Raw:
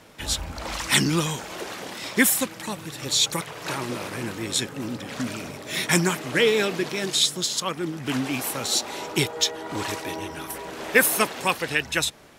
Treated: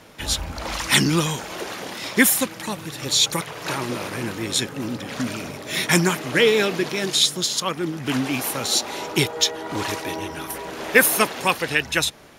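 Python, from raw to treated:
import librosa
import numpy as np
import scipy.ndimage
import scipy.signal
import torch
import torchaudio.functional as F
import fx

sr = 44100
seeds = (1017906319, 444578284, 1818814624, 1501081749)

y = fx.notch(x, sr, hz=7900.0, q=11.0)
y = y * 10.0 ** (3.0 / 20.0)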